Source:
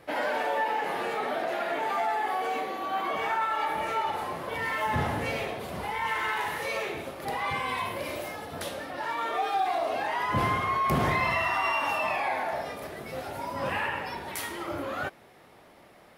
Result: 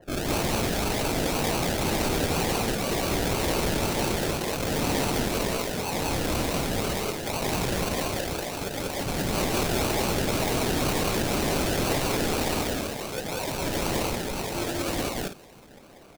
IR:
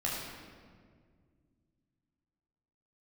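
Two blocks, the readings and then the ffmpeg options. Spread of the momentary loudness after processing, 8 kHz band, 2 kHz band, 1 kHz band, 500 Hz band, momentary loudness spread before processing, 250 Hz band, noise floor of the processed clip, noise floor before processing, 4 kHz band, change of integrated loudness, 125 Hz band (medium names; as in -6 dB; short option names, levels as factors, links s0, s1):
5 LU, +16.0 dB, -1.5 dB, -3.5 dB, +4.5 dB, 9 LU, +10.0 dB, -49 dBFS, -55 dBFS, +8.5 dB, +3.0 dB, +8.0 dB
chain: -af "equalizer=f=67:t=o:w=0.38:g=-11.5,acrusher=samples=36:mix=1:aa=0.000001:lfo=1:lforange=21.6:lforate=2,aeval=exprs='(mod(20*val(0)+1,2)-1)/20':c=same,aecho=1:1:189.5|242:1|0.355,adynamicequalizer=threshold=0.00355:dfrequency=2600:dqfactor=0.7:tfrequency=2600:tqfactor=0.7:attack=5:release=100:ratio=0.375:range=3:mode=boostabove:tftype=highshelf,volume=1.19"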